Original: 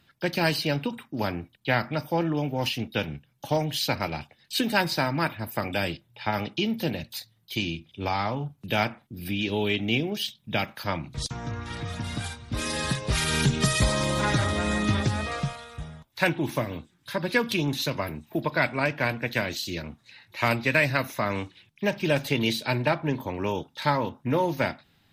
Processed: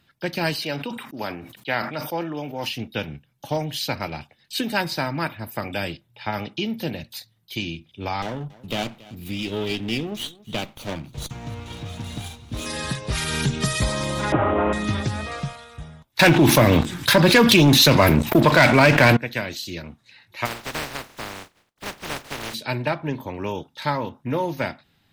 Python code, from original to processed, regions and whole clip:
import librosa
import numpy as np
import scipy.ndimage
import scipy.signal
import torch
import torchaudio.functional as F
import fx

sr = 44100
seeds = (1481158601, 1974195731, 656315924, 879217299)

y = fx.chain(x, sr, fx.highpass(hz=330.0, slope=6),
    fx.sustainer(db_per_s=67.0), at=(0.55, 2.69))
y = fx.chain(y, sr, fx.lower_of_two(delay_ms=0.3),
    fx.echo_single(ms=279, db=-20.5), at=(8.22, 12.66))
y = fx.chain(y, sr, fx.cvsd(bps=16000),
    fx.band_shelf(hz=590.0, db=11.0, octaves=2.5), at=(14.32, 14.73))
y = fx.chain(y, sr, fx.leveller(passes=3),
    fx.env_flatten(amount_pct=70), at=(16.19, 19.17))
y = fx.spec_flatten(y, sr, power=0.11, at=(20.45, 22.53), fade=0.02)
y = fx.lowpass(y, sr, hz=1500.0, slope=6, at=(20.45, 22.53), fade=0.02)
y = fx.gate_hold(y, sr, open_db=-53.0, close_db=-62.0, hold_ms=71.0, range_db=-21, attack_ms=1.4, release_ms=100.0, at=(20.45, 22.53), fade=0.02)